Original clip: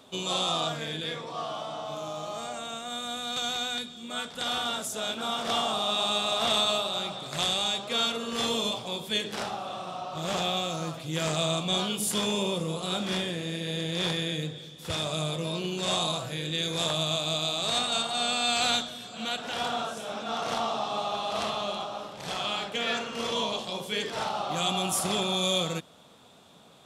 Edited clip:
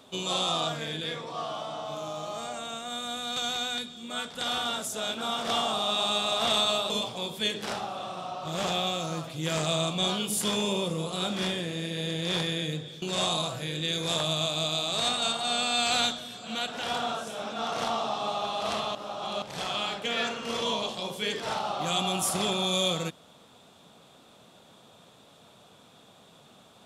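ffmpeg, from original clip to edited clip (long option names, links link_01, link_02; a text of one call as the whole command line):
ffmpeg -i in.wav -filter_complex "[0:a]asplit=5[link_01][link_02][link_03][link_04][link_05];[link_01]atrim=end=6.902[link_06];[link_02]atrim=start=8.598:end=14.722[link_07];[link_03]atrim=start=15.718:end=21.652[link_08];[link_04]atrim=start=21.648:end=22.122,asetpts=PTS-STARTPTS,areverse[link_09];[link_05]atrim=start=22.118[link_10];[link_06][link_07]acrossfade=duration=0.004:curve1=hsin:curve2=hsin[link_11];[link_11][link_08]acrossfade=duration=0.004:curve1=hsin:curve2=hsin[link_12];[link_12][link_09]acrossfade=duration=0.004:curve1=hsin:curve2=hsin[link_13];[link_13][link_10]acrossfade=duration=0.004:curve1=hsin:curve2=hsin" out.wav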